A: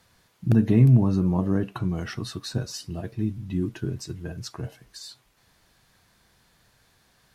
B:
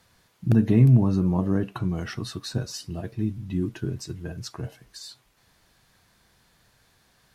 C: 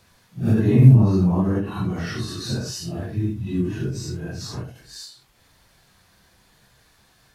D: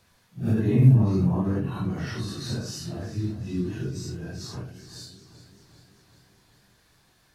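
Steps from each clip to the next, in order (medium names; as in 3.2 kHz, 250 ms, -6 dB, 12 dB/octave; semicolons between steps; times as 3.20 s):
no audible change
phase randomisation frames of 200 ms; endings held to a fixed fall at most 110 dB/s; trim +4.5 dB
modulated delay 388 ms, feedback 62%, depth 56 cents, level -14.5 dB; trim -5 dB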